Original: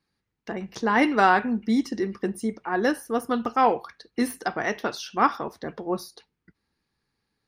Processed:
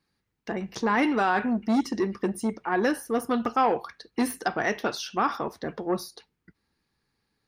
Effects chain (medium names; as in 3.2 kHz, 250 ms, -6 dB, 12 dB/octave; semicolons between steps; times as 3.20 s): peak limiter -13.5 dBFS, peak gain reduction 8.5 dB; transformer saturation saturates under 500 Hz; trim +1.5 dB